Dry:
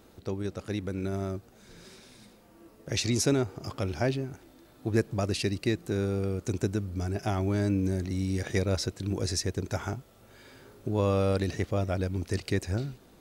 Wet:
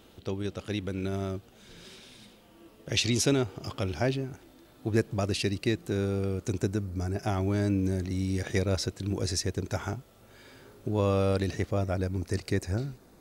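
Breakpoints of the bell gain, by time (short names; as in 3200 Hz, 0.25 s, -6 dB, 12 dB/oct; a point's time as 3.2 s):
bell 3100 Hz 0.55 oct
3.57 s +9.5 dB
4.04 s +3 dB
6.42 s +3 dB
7.06 s -8 dB
7.38 s +1 dB
11.46 s +1 dB
11.95 s -6.5 dB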